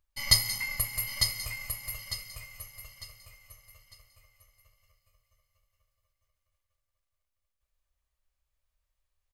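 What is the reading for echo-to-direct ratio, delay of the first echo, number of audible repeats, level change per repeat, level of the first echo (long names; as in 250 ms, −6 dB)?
−5.0 dB, 901 ms, 3, −10.0 dB, −5.5 dB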